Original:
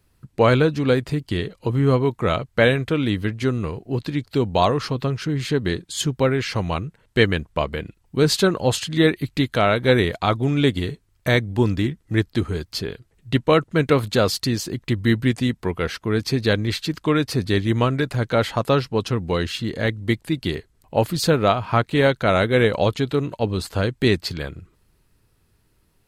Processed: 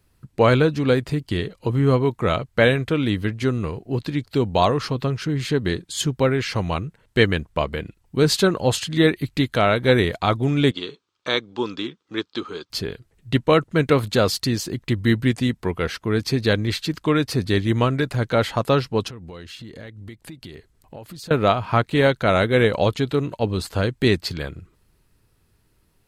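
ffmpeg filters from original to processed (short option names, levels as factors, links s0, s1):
-filter_complex "[0:a]asettb=1/sr,asplit=3[s0][s1][s2];[s0]atrim=end=10.714[s3];[s1]atrim=start=10.71:end=12.7,asetpts=PTS-STARTPTS,afade=t=in:d=0.004:c=qsin,afade=t=out:st=1.986:d=0.004:c=qsin,highpass=390,equalizer=f=660:t=q:w=4:g=-9,equalizer=f=1200:t=q:w=4:g=6,equalizer=f=1900:t=q:w=4:g=-9,equalizer=f=3500:t=q:w=4:g=5,lowpass=f=6200:w=0.5412,lowpass=f=6200:w=1.3066[s4];[s2]atrim=start=12.696[s5];[s3][s4]acrossfade=d=0.004:c1=hsin:c2=qsin[s6];[s6][s5]acrossfade=d=0.004:c1=qsin:c2=hsin,asettb=1/sr,asplit=3[s7][s8][s9];[s7]atrim=end=19.084[s10];[s8]atrim=start=19.08:end=21.31,asetpts=PTS-STARTPTS,afade=t=in:d=0.004:c=qsin,afade=t=out:st=2.226:d=0.004:c=qsin,acompressor=threshold=0.0178:ratio=8:attack=3.2:release=140:knee=1:detection=peak[s11];[s9]atrim=start=21.306[s12];[s10][s11]acrossfade=d=0.004:c1=hsin:c2=qsin[s13];[s13][s12]acrossfade=d=0.004:c1=qsin:c2=hsin"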